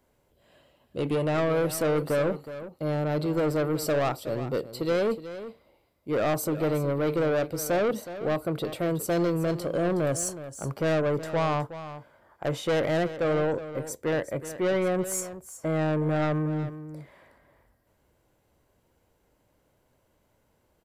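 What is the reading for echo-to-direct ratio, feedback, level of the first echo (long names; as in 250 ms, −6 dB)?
−13.0 dB, repeats not evenly spaced, −13.0 dB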